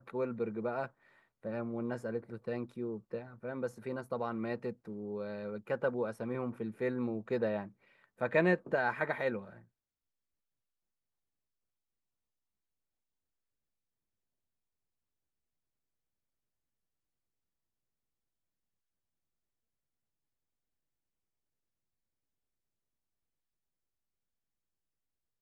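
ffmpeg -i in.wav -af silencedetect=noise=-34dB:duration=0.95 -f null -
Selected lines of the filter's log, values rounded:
silence_start: 9.38
silence_end: 25.41 | silence_duration: 16.03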